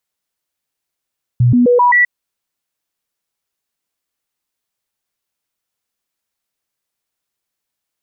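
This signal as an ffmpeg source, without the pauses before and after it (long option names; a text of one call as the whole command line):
ffmpeg -f lavfi -i "aevalsrc='0.447*clip(min(mod(t,0.13),0.13-mod(t,0.13))/0.005,0,1)*sin(2*PI*122*pow(2,floor(t/0.13)/1)*mod(t,0.13))':duration=0.65:sample_rate=44100" out.wav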